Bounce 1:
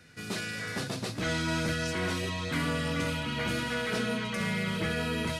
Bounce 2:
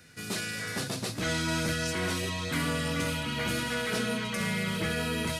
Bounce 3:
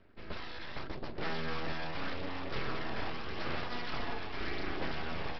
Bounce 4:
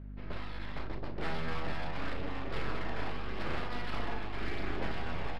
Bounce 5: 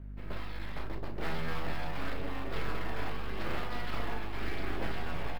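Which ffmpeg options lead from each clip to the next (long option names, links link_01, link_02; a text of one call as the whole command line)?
ffmpeg -i in.wav -af "highshelf=frequency=7100:gain=9.5" out.wav
ffmpeg -i in.wav -af "adynamicsmooth=sensitivity=4:basefreq=1100,aresample=11025,aeval=exprs='abs(val(0))':channel_layout=same,aresample=44100,aphaser=in_gain=1:out_gain=1:delay=1.2:decay=0.22:speed=0.84:type=sinusoidal,volume=-3.5dB" out.wav
ffmpeg -i in.wav -filter_complex "[0:a]adynamicsmooth=sensitivity=7.5:basefreq=3100,aeval=exprs='val(0)+0.00631*(sin(2*PI*50*n/s)+sin(2*PI*2*50*n/s)/2+sin(2*PI*3*50*n/s)/3+sin(2*PI*4*50*n/s)/4+sin(2*PI*5*50*n/s)/5)':channel_layout=same,asplit=2[link_01][link_02];[link_02]aecho=0:1:36|60:0.316|0.15[link_03];[link_01][link_03]amix=inputs=2:normalize=0" out.wav
ffmpeg -i in.wav -filter_complex "[0:a]acrossover=split=820[link_01][link_02];[link_02]acrusher=bits=4:mode=log:mix=0:aa=0.000001[link_03];[link_01][link_03]amix=inputs=2:normalize=0,asplit=2[link_04][link_05];[link_05]adelay=18,volume=-12dB[link_06];[link_04][link_06]amix=inputs=2:normalize=0" out.wav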